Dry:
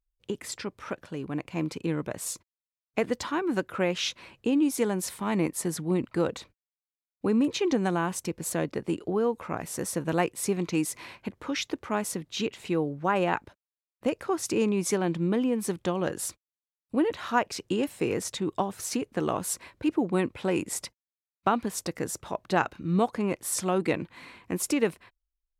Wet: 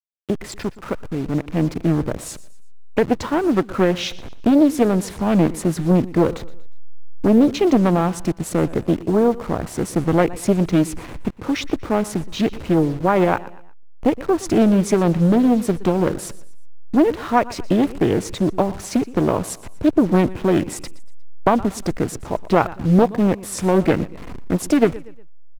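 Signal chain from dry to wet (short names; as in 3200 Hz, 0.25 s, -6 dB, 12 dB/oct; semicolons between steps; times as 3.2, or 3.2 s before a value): level-crossing sampler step -38 dBFS; tilt -2 dB/oct; feedback echo 0.119 s, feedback 39%, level -19 dB; Doppler distortion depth 0.68 ms; gain +7.5 dB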